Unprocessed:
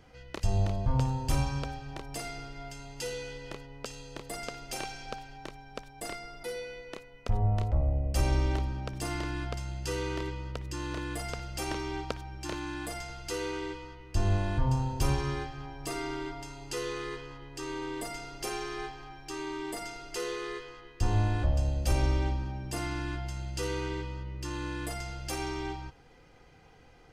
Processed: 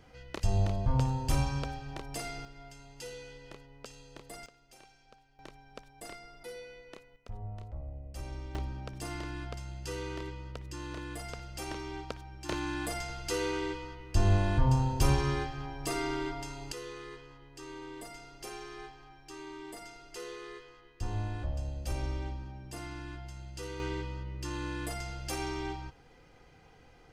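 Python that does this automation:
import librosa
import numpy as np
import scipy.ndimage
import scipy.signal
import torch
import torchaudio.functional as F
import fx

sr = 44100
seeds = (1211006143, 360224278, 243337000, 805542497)

y = fx.gain(x, sr, db=fx.steps((0.0, -0.5), (2.45, -7.5), (4.46, -20.0), (5.39, -7.0), (7.16, -14.5), (8.55, -5.0), (12.49, 2.0), (16.72, -8.0), (23.8, -1.0)))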